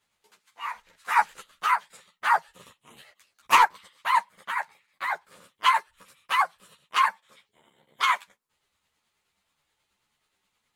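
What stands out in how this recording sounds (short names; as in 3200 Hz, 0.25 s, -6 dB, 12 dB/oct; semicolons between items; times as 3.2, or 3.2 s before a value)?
tremolo triangle 9.4 Hz, depth 45%; a shimmering, thickened sound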